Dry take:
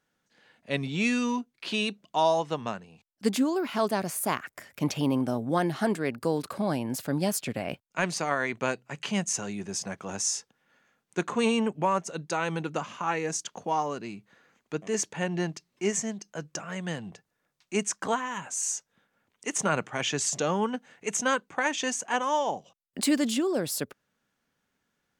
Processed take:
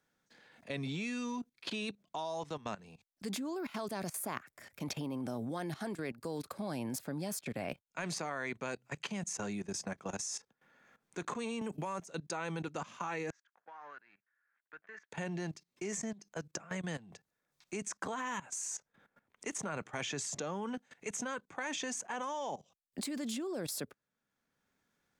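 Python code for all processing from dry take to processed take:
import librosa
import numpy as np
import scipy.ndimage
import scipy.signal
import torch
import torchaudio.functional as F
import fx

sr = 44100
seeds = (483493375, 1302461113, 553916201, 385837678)

y = fx.chain(x, sr, fx.peak_eq(hz=13000.0, db=8.5, octaves=0.94),
    fx.band_squash(depth_pct=100), at=(11.61, 12.07))
y = fx.chain(y, sr, fx.law_mismatch(coded='A'),
    fx.bandpass_q(hz=1600.0, q=5.5),
    fx.air_absorb(metres=160.0), at=(13.3, 15.12))
y = fx.level_steps(y, sr, step_db=18)
y = fx.notch(y, sr, hz=2900.0, q=13.0)
y = fx.band_squash(y, sr, depth_pct=40)
y = y * librosa.db_to_amplitude(-2.0)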